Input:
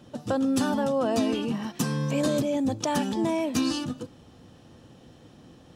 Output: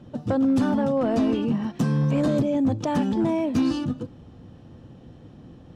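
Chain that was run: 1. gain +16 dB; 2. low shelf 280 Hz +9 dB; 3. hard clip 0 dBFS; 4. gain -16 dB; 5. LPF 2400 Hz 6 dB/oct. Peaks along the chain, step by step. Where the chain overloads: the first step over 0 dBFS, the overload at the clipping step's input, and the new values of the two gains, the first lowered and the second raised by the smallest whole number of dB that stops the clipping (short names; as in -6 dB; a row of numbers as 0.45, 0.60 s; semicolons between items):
+3.5, +6.5, 0.0, -16.0, -16.0 dBFS; step 1, 6.5 dB; step 1 +9 dB, step 4 -9 dB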